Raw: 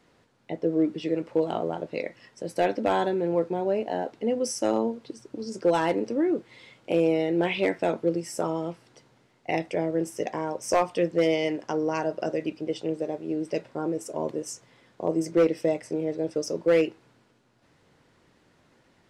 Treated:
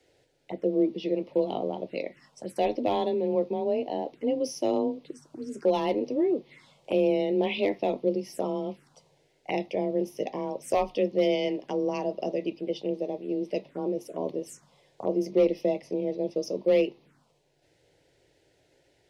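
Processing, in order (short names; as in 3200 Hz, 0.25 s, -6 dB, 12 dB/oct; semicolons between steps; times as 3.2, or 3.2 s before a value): envelope phaser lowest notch 180 Hz, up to 1500 Hz, full sweep at -28 dBFS; frequency shift +23 Hz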